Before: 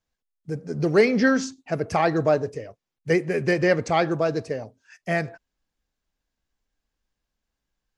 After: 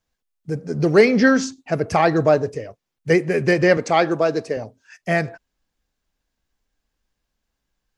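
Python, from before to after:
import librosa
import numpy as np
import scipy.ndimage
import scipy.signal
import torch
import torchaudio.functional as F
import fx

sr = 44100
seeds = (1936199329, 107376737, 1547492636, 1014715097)

y = fx.highpass(x, sr, hz=200.0, slope=12, at=(3.77, 4.57))
y = y * 10.0 ** (4.5 / 20.0)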